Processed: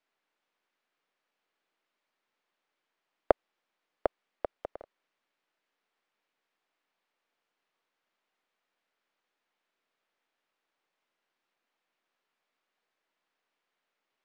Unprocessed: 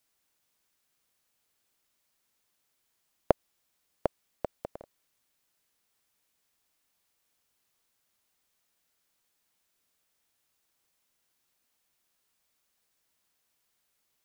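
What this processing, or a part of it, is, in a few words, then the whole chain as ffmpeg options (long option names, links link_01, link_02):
crystal radio: -af "highpass=290,lowpass=2600,aeval=exprs='if(lt(val(0),0),0.708*val(0),val(0))':channel_layout=same,volume=2.5dB"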